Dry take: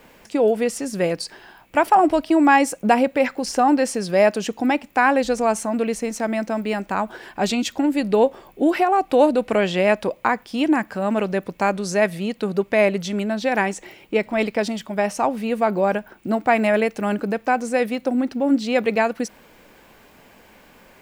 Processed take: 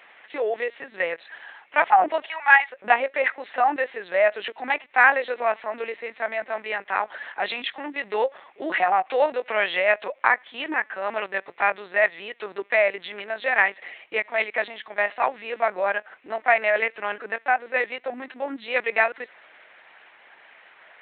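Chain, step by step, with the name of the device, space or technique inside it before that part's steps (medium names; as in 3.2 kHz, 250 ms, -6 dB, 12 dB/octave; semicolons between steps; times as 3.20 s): 2.29–2.70 s: high-pass 900 Hz 24 dB/octave; talking toy (LPC vocoder at 8 kHz pitch kept; high-pass 700 Hz 12 dB/octave; peaking EQ 1.9 kHz +8.5 dB 0.58 oct)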